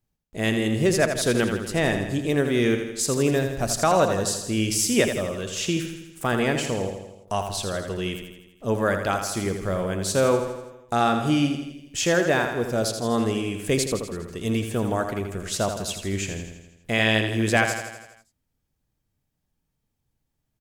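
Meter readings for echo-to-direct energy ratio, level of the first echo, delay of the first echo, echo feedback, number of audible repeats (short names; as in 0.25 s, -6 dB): -5.5 dB, -7.5 dB, 82 ms, 58%, 6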